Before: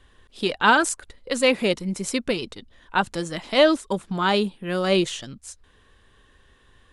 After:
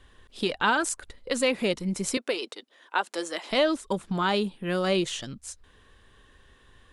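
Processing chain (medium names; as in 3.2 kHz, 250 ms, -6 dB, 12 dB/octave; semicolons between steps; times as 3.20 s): 2.17–3.51 s: high-pass 340 Hz 24 dB/octave; compression 2:1, threshold -25 dBFS, peak gain reduction 8 dB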